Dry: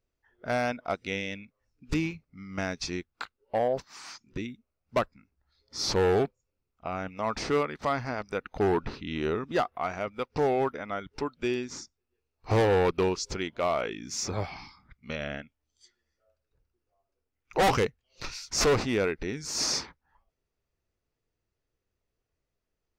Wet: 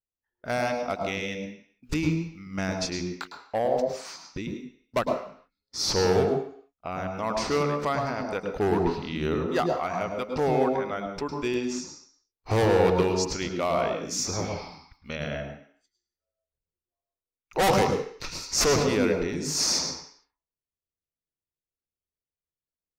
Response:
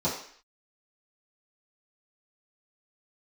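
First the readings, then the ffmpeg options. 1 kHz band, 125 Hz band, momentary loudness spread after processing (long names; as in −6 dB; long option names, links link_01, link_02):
+2.5 dB, +3.5 dB, 14 LU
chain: -filter_complex "[0:a]agate=range=-20dB:threshold=-53dB:ratio=16:detection=peak,asplit=2[link_01][link_02];[1:a]atrim=start_sample=2205,adelay=104[link_03];[link_02][link_03]afir=irnorm=-1:irlink=0,volume=-14dB[link_04];[link_01][link_04]amix=inputs=2:normalize=0,crystalizer=i=1:c=0"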